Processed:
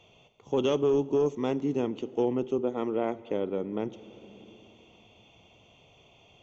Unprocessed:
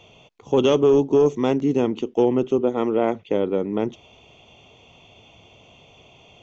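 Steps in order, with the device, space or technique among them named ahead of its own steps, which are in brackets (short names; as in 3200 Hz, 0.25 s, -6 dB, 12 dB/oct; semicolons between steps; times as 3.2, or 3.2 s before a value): compressed reverb return (on a send at -8 dB: reverb RT60 2.3 s, pre-delay 28 ms + compressor 4:1, threshold -29 dBFS, peak gain reduction 14.5 dB); on the sum: gain -8.5 dB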